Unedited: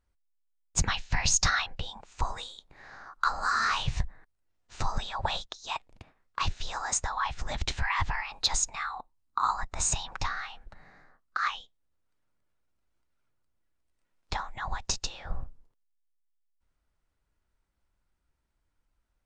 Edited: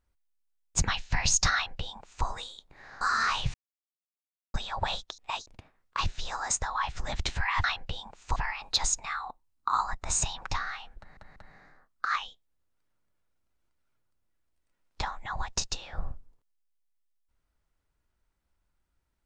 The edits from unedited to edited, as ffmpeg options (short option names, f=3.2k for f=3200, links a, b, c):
-filter_complex "[0:a]asplit=10[a][b][c][d][e][f][g][h][i][j];[a]atrim=end=3.012[k];[b]atrim=start=3.428:end=3.96,asetpts=PTS-STARTPTS,afade=t=out:st=0.528:d=0.004:c=hsin[l];[c]atrim=start=3.96:end=4.96,asetpts=PTS-STARTPTS,volume=0[m];[d]atrim=start=4.96:end=5.602,asetpts=PTS-STARTPTS,afade=t=in:d=0.004:c=hsin[n];[e]atrim=start=5.598:end=5.882,asetpts=PTS-STARTPTS,areverse[o];[f]atrim=start=5.878:end=8.062[p];[g]atrim=start=1.538:end=2.262[q];[h]atrim=start=8.058:end=10.872[r];[i]atrim=start=10.678:end=10.872[s];[j]atrim=start=10.678[t];[l][m][n]concat=n=3:v=0:a=1[u];[k][u]acrossfade=d=0.004:c1=hsin:c2=hsin[v];[v][o]acrossfade=d=0.004:c1=hsin:c2=hsin[w];[w][p]acrossfade=d=0.004:c1=hsin:c2=hsin[x];[x][q]acrossfade=d=0.004:c1=hsin:c2=hsin[y];[y][r]acrossfade=d=0.004:c1=hsin:c2=hsin[z];[z][s]acrossfade=d=0.004:c1=hsin:c2=hsin[aa];[aa][t]acrossfade=d=0.004:c1=hsin:c2=hsin"